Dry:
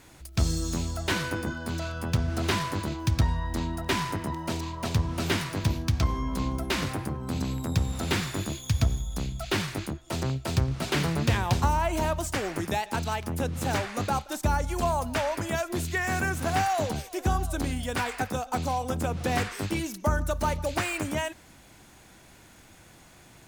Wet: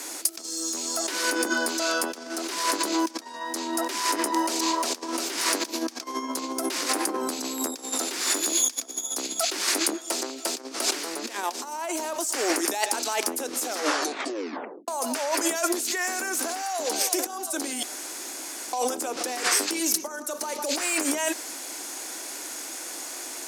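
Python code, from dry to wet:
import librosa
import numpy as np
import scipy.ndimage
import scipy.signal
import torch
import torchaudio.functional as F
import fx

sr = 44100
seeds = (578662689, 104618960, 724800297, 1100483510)

y = fx.edit(x, sr, fx.tape_stop(start_s=13.59, length_s=1.29),
    fx.room_tone_fill(start_s=17.83, length_s=0.9), tone=tone)
y = fx.band_shelf(y, sr, hz=7600.0, db=10.0, octaves=1.7)
y = fx.over_compress(y, sr, threshold_db=-34.0, ratio=-1.0)
y = scipy.signal.sosfilt(scipy.signal.butter(8, 270.0, 'highpass', fs=sr, output='sos'), y)
y = F.gain(torch.from_numpy(y), 8.0).numpy()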